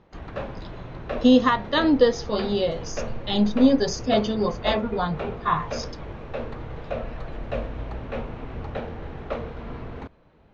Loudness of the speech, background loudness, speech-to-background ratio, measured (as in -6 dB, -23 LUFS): -22.5 LUFS, -34.5 LUFS, 12.0 dB